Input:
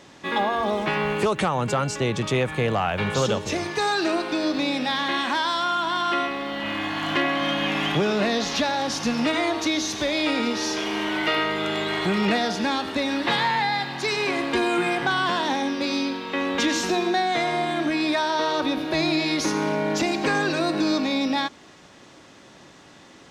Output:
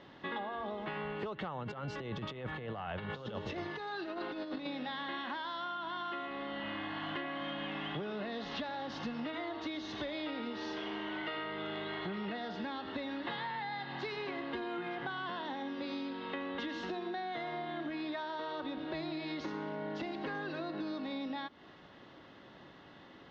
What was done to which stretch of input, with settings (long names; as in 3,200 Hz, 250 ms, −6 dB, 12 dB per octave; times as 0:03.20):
0:01.63–0:04.67: compressor whose output falls as the input rises −27 dBFS, ratio −0.5
whole clip: low-pass filter 3,700 Hz 24 dB per octave; notch filter 2,400 Hz, Q 7.1; downward compressor 6 to 1, threshold −31 dBFS; level −6 dB